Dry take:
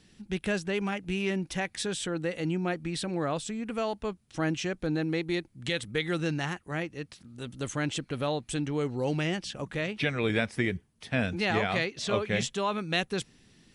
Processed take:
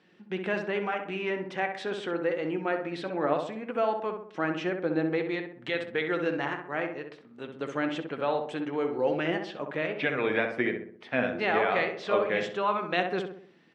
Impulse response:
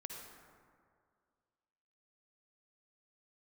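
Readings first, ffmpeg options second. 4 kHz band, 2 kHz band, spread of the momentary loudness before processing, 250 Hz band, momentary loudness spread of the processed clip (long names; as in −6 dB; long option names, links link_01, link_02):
−5.0 dB, +1.5 dB, 7 LU, −1.5 dB, 8 LU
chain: -filter_complex "[0:a]flanger=delay=5.5:depth=2.6:regen=66:speed=0.23:shape=sinusoidal,highpass=350,lowpass=2100,asplit=2[link_01][link_02];[link_02]adelay=64,lowpass=frequency=1500:poles=1,volume=-4.5dB,asplit=2[link_03][link_04];[link_04]adelay=64,lowpass=frequency=1500:poles=1,volume=0.51,asplit=2[link_05][link_06];[link_06]adelay=64,lowpass=frequency=1500:poles=1,volume=0.51,asplit=2[link_07][link_08];[link_08]adelay=64,lowpass=frequency=1500:poles=1,volume=0.51,asplit=2[link_09][link_10];[link_10]adelay=64,lowpass=frequency=1500:poles=1,volume=0.51,asplit=2[link_11][link_12];[link_12]adelay=64,lowpass=frequency=1500:poles=1,volume=0.51,asplit=2[link_13][link_14];[link_14]adelay=64,lowpass=frequency=1500:poles=1,volume=0.51[link_15];[link_03][link_05][link_07][link_09][link_11][link_13][link_15]amix=inputs=7:normalize=0[link_16];[link_01][link_16]amix=inputs=2:normalize=0,volume=8dB"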